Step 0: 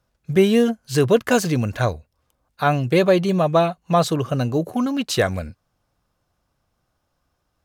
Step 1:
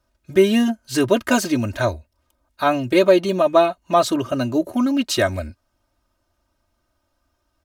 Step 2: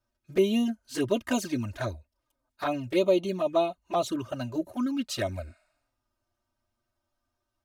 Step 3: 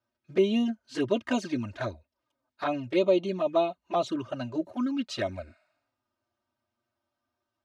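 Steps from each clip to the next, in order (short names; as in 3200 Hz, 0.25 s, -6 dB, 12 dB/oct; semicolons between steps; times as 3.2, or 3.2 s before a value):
comb 3.2 ms, depth 88%; gain -1 dB
envelope flanger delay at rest 8.5 ms, full sweep at -13 dBFS; spectral repair 5.5–5.95, 560–12000 Hz both; gain -8 dB
BPF 120–4700 Hz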